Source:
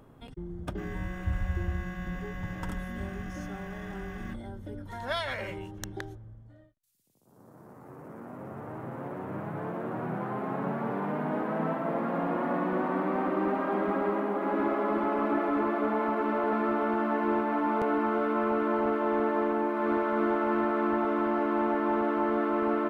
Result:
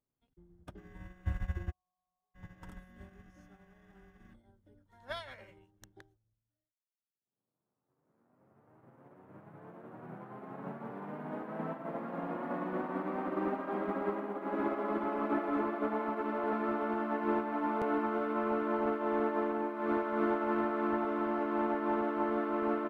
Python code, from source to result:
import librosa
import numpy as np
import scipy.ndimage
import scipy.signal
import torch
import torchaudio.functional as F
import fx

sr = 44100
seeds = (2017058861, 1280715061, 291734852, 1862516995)

y = fx.formant_cascade(x, sr, vowel='a', at=(1.7, 2.34), fade=0.02)
y = fx.upward_expand(y, sr, threshold_db=-49.0, expansion=2.5)
y = F.gain(torch.from_numpy(y), -2.0).numpy()